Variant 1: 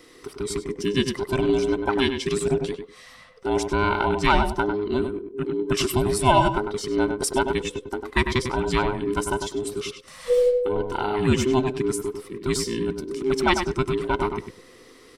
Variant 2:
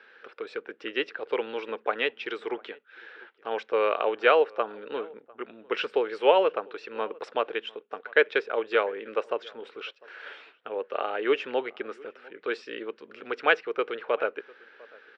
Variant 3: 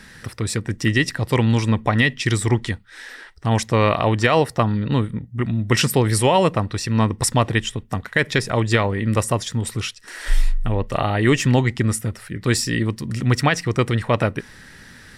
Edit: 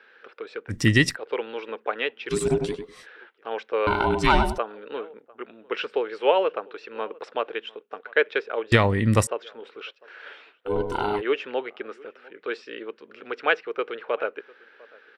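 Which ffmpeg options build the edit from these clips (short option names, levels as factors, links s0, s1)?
-filter_complex "[2:a]asplit=2[s0][s1];[0:a]asplit=3[s2][s3][s4];[1:a]asplit=6[s5][s6][s7][s8][s9][s10];[s5]atrim=end=0.74[s11];[s0]atrim=start=0.68:end=1.17[s12];[s6]atrim=start=1.11:end=2.34[s13];[s2]atrim=start=2.28:end=3.07[s14];[s7]atrim=start=3.01:end=3.872[s15];[s3]atrim=start=3.868:end=4.582[s16];[s8]atrim=start=4.578:end=8.722[s17];[s1]atrim=start=8.718:end=9.272[s18];[s9]atrim=start=9.268:end=10.71[s19];[s4]atrim=start=10.65:end=11.22[s20];[s10]atrim=start=11.16[s21];[s11][s12]acrossfade=d=0.06:c1=tri:c2=tri[s22];[s22][s13]acrossfade=d=0.06:c1=tri:c2=tri[s23];[s23][s14]acrossfade=d=0.06:c1=tri:c2=tri[s24];[s24][s15]acrossfade=d=0.06:c1=tri:c2=tri[s25];[s25][s16]acrossfade=d=0.004:c1=hsin:c2=hsin[s26];[s26][s17]acrossfade=d=0.004:c1=hsin:c2=hsin[s27];[s27][s18]acrossfade=d=0.004:c1=hsin:c2=hsin[s28];[s28][s19]acrossfade=d=0.004:c1=hsin:c2=hsin[s29];[s29][s20]acrossfade=d=0.06:c1=tri:c2=tri[s30];[s30][s21]acrossfade=d=0.06:c1=tri:c2=tri"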